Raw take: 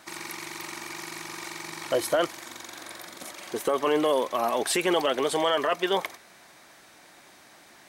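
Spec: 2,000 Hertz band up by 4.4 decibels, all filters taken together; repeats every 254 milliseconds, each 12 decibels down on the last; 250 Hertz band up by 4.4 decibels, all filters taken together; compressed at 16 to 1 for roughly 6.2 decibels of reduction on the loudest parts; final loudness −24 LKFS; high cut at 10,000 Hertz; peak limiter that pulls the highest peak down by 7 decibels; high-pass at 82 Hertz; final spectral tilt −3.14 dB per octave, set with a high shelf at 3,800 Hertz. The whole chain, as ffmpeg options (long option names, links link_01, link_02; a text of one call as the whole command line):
ffmpeg -i in.wav -af "highpass=82,lowpass=10000,equalizer=frequency=250:width_type=o:gain=6.5,equalizer=frequency=2000:width_type=o:gain=7,highshelf=frequency=3800:gain=-6.5,acompressor=threshold=-23dB:ratio=16,alimiter=limit=-20.5dB:level=0:latency=1,aecho=1:1:254|508|762:0.251|0.0628|0.0157,volume=8.5dB" out.wav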